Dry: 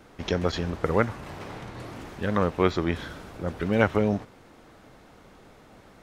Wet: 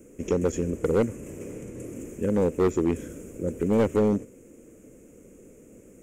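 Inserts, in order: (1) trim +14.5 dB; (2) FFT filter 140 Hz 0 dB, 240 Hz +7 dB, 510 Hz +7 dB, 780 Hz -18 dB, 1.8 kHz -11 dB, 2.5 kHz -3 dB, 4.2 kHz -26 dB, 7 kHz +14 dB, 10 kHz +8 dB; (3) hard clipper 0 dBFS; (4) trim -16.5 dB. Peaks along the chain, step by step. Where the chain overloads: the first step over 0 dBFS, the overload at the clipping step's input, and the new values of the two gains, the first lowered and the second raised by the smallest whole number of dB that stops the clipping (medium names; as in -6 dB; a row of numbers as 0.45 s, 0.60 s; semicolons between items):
+8.0 dBFS, +9.5 dBFS, 0.0 dBFS, -16.5 dBFS; step 1, 9.5 dB; step 1 +4.5 dB, step 4 -6.5 dB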